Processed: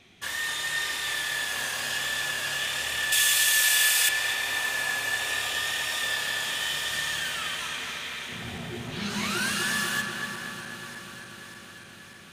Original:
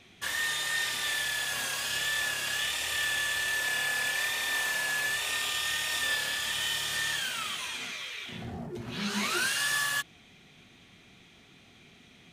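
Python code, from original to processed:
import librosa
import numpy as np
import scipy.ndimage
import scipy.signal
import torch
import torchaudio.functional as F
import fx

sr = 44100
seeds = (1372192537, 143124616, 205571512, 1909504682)

y = fx.reverse_delay_fb(x, sr, ms=296, feedback_pct=81, wet_db=-13.0)
y = fx.tilt_eq(y, sr, slope=4.5, at=(3.12, 4.09))
y = fx.highpass(y, sr, hz=120.0, slope=24, at=(5.64, 6.6))
y = fx.echo_filtered(y, sr, ms=245, feedback_pct=75, hz=2700.0, wet_db=-4.0)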